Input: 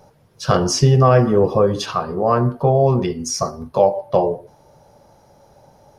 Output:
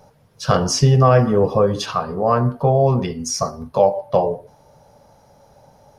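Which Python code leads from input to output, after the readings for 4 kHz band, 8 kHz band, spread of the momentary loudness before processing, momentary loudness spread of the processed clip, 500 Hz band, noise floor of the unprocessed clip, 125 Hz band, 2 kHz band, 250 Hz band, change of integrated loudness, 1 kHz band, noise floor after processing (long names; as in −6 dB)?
0.0 dB, 0.0 dB, 10 LU, 10 LU, −1.0 dB, −53 dBFS, 0.0 dB, 0.0 dB, −1.0 dB, −0.5 dB, 0.0 dB, −53 dBFS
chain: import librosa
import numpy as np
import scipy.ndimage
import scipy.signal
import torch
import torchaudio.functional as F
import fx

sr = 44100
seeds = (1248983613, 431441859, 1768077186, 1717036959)

y = fx.peak_eq(x, sr, hz=350.0, db=-9.0, octaves=0.22)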